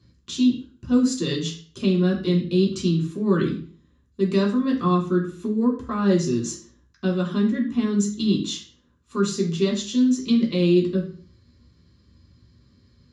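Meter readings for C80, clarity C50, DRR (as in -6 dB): 13.0 dB, 8.5 dB, -2.5 dB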